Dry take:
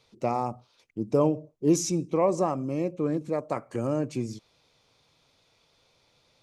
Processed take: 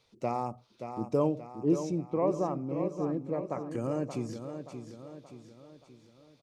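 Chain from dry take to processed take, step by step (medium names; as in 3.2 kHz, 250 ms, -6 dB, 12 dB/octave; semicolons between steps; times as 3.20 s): 1.50–3.67 s: low-pass 1.3 kHz 6 dB/octave; feedback delay 577 ms, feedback 48%, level -8.5 dB; trim -4.5 dB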